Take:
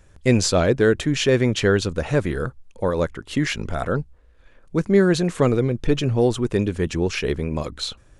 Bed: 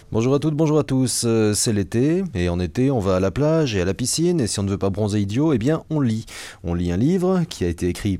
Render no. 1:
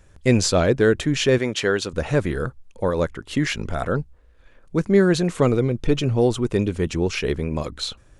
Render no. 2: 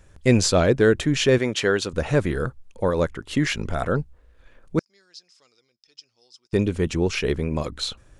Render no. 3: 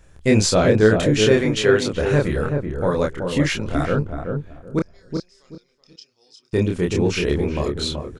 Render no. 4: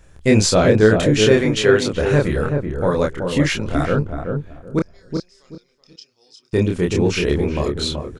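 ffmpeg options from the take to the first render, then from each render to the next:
-filter_complex "[0:a]asettb=1/sr,asplit=3[a][b][c];[a]atrim=end=1.384[d];[b]atrim=start=1.38:end=1.93,asetpts=PTS-STARTPTS,afade=t=in:d=0.004:c=qsin,afade=t=out:st=0.546:d=0.004:c=qsin,highpass=f=380:p=1[e];[c]atrim=start=1.926[f];[d][e]acrossfade=d=0.004:c1=hsin:c2=qsin[g];[g][f]acrossfade=d=0.004:c1=qsin:c2=hsin,asettb=1/sr,asplit=3[h][i][j];[h]atrim=end=5.294[k];[i]atrim=start=5.29:end=7.2,asetpts=PTS-STARTPTS,afade=t=in:d=0.004:c=qsin,afade=t=out:st=1.906:d=0.004:c=qsin,bandreject=f=1.7k:w=12[l];[j]atrim=start=7.196[m];[k][l]acrossfade=d=0.004:c1=hsin:c2=qsin[n];[n][m]acrossfade=d=0.004:c1=qsin:c2=hsin"
-filter_complex "[0:a]asettb=1/sr,asplit=3[a][b][c];[a]atrim=end=4.794[d];[b]atrim=start=4.79:end=6.53,asetpts=PTS-STARTPTS,afade=t=in:d=0.004:c=qsin,afade=t=out:st=1.736:d=0.004:c=qsin,bandpass=f=5.1k:t=q:w=16[e];[c]atrim=start=6.526[f];[d][e]acrossfade=d=0.004:c1=hsin:c2=qsin[g];[g][f]acrossfade=d=0.004:c1=qsin:c2=hsin"
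-filter_complex "[0:a]asplit=2[a][b];[b]adelay=28,volume=-2.5dB[c];[a][c]amix=inputs=2:normalize=0,asplit=2[d][e];[e]adelay=379,lowpass=f=870:p=1,volume=-4dB,asplit=2[f][g];[g]adelay=379,lowpass=f=870:p=1,volume=0.24,asplit=2[h][i];[i]adelay=379,lowpass=f=870:p=1,volume=0.24[j];[d][f][h][j]amix=inputs=4:normalize=0"
-af "volume=2dB,alimiter=limit=-1dB:level=0:latency=1"

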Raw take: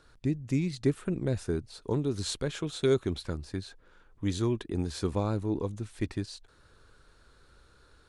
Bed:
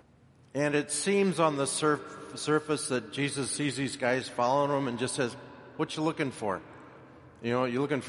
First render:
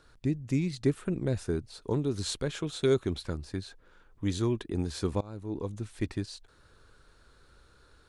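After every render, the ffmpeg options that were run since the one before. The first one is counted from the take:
-filter_complex "[0:a]asplit=2[a][b];[a]atrim=end=5.21,asetpts=PTS-STARTPTS,afade=t=out:st=5.206:d=0.004:c=hsin:silence=0.0749894[c];[b]atrim=start=5.21,asetpts=PTS-STARTPTS,afade=t=in:d=0.59:silence=0.0749894[d];[c][d]concat=n=2:v=0:a=1"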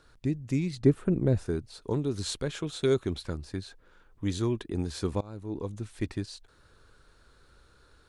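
-filter_complex "[0:a]asettb=1/sr,asplit=3[a][b][c];[a]atrim=end=0.764[d];[b]atrim=start=0.76:end=1.46,asetpts=PTS-STARTPTS,afade=t=in:d=0.004:c=qsin,afade=t=out:st=0.696:d=0.004:c=qsin,tiltshelf=f=1.3k:g=5.5[e];[c]atrim=start=1.456[f];[d][e]acrossfade=d=0.004:c1=hsin:c2=qsin[g];[g][f]acrossfade=d=0.004:c1=qsin:c2=hsin"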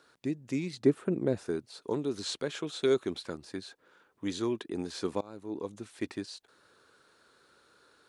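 -filter_complex "[0:a]highpass=250,acrossover=split=7600[a][b];[b]acompressor=threshold=-56dB:ratio=4:attack=1:release=60[c];[a][c]amix=inputs=2:normalize=0"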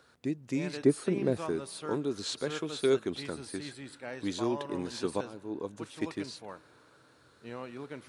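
-filter_complex "[1:a]volume=-13.5dB[a];[0:a][a]amix=inputs=2:normalize=0"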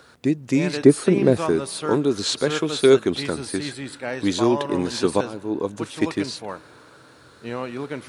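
-af "volume=12dB,alimiter=limit=-2dB:level=0:latency=1"

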